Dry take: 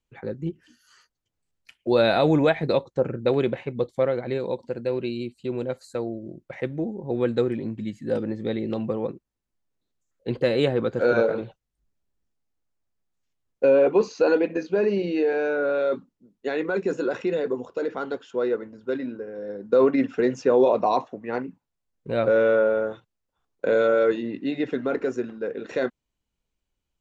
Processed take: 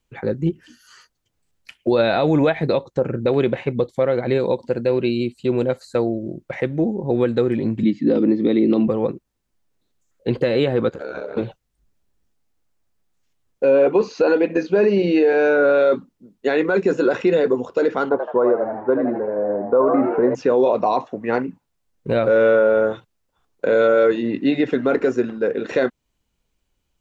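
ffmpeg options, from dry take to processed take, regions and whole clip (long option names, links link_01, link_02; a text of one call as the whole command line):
ffmpeg -i in.wav -filter_complex "[0:a]asettb=1/sr,asplit=3[link_01][link_02][link_03];[link_01]atrim=end=7.834[link_04];[link_02]atrim=start=7.83:end=8.88,asetpts=PTS-STARTPTS,afade=type=in:duration=0.004:curve=qsin,afade=type=out:start_time=1.046:duration=0.004:curve=qsin,acontrast=36,highpass=frequency=160:width=0.5412,highpass=frequency=160:width=1.3066,equalizer=frequency=300:width_type=q:width=4:gain=9,equalizer=frequency=550:width_type=q:width=4:gain=-4,equalizer=frequency=820:width_type=q:width=4:gain=-6,equalizer=frequency=1600:width_type=q:width=4:gain=-10,equalizer=frequency=3000:width_type=q:width=4:gain=-4,lowpass=frequency=4500:width=0.5412,lowpass=frequency=4500:width=1.3066[link_05];[link_03]atrim=start=8.876[link_06];[link_04][link_05]acrossfade=duration=0.004:curve1=hsin:curve2=qsin[link_07];[link_07][link_06]acrossfade=duration=0.004:curve1=qsin:curve2=hsin,asettb=1/sr,asplit=3[link_08][link_09][link_10];[link_08]atrim=end=10.894[link_11];[link_09]atrim=start=10.89:end=11.37,asetpts=PTS-STARTPTS,afade=type=in:duration=0.004:curve=qsin,afade=type=out:start_time=0.476:duration=0.004:curve=qsin,lowshelf=frequency=270:gain=-9.5,acompressor=threshold=-34dB:ratio=6:attack=3.2:release=140:knee=1:detection=peak,aeval=exprs='val(0)*sin(2*PI*36*n/s)':channel_layout=same[link_12];[link_10]atrim=start=11.366[link_13];[link_11][link_12]acrossfade=duration=0.004:curve1=hsin:curve2=qsin[link_14];[link_14][link_13]acrossfade=duration=0.004:curve1=qsin:curve2=hsin,asettb=1/sr,asplit=3[link_15][link_16][link_17];[link_15]atrim=end=18.094[link_18];[link_16]atrim=start=18.09:end=20.35,asetpts=PTS-STARTPTS,afade=type=in:duration=0.004:curve=qsin,afade=type=out:start_time=2.256:duration=0.004:curve=qsin,lowpass=frequency=990:width_type=q:width=3.2,asplit=7[link_19][link_20][link_21][link_22][link_23][link_24][link_25];[link_20]adelay=81,afreqshift=96,volume=-7.5dB[link_26];[link_21]adelay=162,afreqshift=192,volume=-13.9dB[link_27];[link_22]adelay=243,afreqshift=288,volume=-20.3dB[link_28];[link_23]adelay=324,afreqshift=384,volume=-26.6dB[link_29];[link_24]adelay=405,afreqshift=480,volume=-33dB[link_30];[link_25]adelay=486,afreqshift=576,volume=-39.4dB[link_31];[link_19][link_26][link_27][link_28][link_29][link_30][link_31]amix=inputs=7:normalize=0,atrim=end_sample=99666[link_32];[link_17]atrim=start=20.346[link_33];[link_18][link_32]acrossfade=duration=0.004:curve1=hsin:curve2=qsin[link_34];[link_34][link_33]acrossfade=duration=0.004:curve1=qsin:curve2=hsin,acrossover=split=4900[link_35][link_36];[link_36]acompressor=threshold=-57dB:ratio=4:attack=1:release=60[link_37];[link_35][link_37]amix=inputs=2:normalize=0,alimiter=limit=-17dB:level=0:latency=1:release=238,volume=9dB" out.wav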